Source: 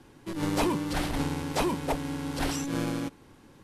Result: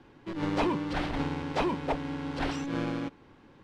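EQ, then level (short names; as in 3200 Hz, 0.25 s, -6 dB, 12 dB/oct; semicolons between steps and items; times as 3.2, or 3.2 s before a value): LPF 3400 Hz 12 dB/oct; low shelf 230 Hz -3.5 dB; 0.0 dB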